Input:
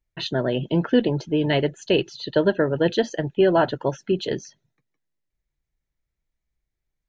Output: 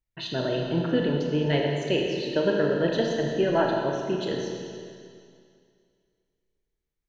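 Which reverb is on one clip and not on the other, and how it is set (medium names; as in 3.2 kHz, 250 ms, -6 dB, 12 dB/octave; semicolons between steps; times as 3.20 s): Schroeder reverb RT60 2.3 s, combs from 27 ms, DRR -0.5 dB; trim -6 dB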